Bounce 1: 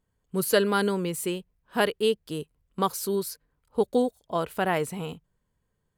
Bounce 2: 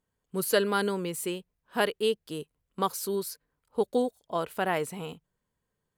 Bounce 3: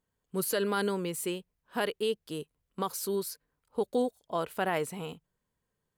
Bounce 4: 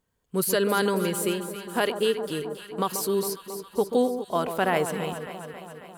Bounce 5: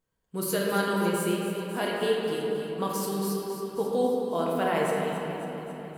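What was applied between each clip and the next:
bass shelf 130 Hz -9 dB; trim -2 dB
peak limiter -18 dBFS, peak gain reduction 6.5 dB; trim -1 dB
echo whose repeats swap between lows and highs 136 ms, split 1.2 kHz, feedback 81%, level -9 dB; trim +6 dB
simulated room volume 150 m³, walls hard, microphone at 0.61 m; trim -7 dB

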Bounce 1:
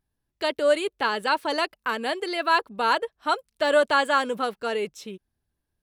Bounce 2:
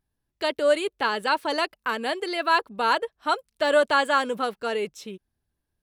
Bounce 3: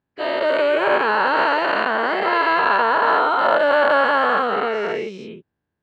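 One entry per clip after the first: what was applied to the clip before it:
no audible change
every event in the spectrogram widened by 480 ms; in parallel at -6 dB: saturation -15.5 dBFS, distortion -10 dB; on the sum: band-pass 110–2400 Hz; trim -4 dB

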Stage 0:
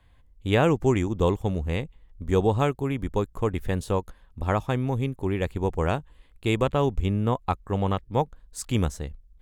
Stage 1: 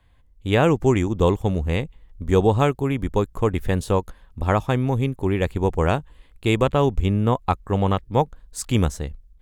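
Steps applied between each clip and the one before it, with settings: level rider gain up to 5 dB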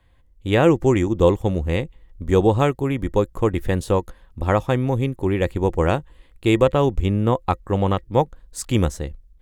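small resonant body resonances 340/520/1900 Hz, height 7 dB, ringing for 80 ms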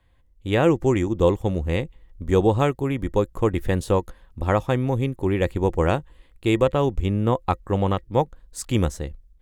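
level rider gain up to 3.5 dB; trim -3.5 dB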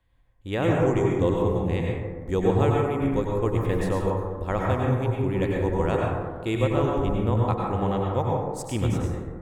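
plate-style reverb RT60 1.6 s, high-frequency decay 0.3×, pre-delay 85 ms, DRR -2.5 dB; trim -7 dB

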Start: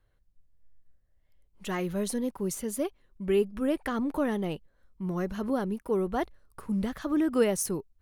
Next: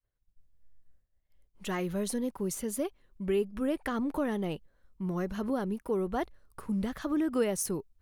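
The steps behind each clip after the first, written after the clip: expander -58 dBFS; compression 1.5:1, threshold -31 dBFS, peak gain reduction 5 dB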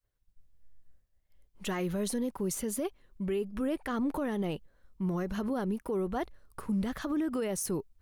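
peak limiter -27 dBFS, peak gain reduction 10.5 dB; trim +2.5 dB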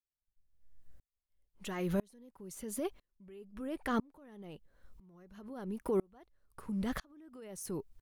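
in parallel at +2 dB: compression, threshold -40 dBFS, peak gain reduction 12 dB; on the sum: sawtooth tremolo in dB swelling 1 Hz, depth 35 dB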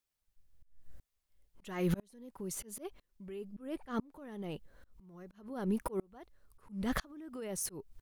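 slow attack 381 ms; trim +7.5 dB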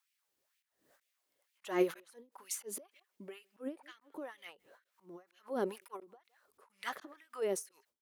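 LFO high-pass sine 2.1 Hz 310–2500 Hz; speakerphone echo 160 ms, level -30 dB; endings held to a fixed fall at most 240 dB/s; trim +3.5 dB

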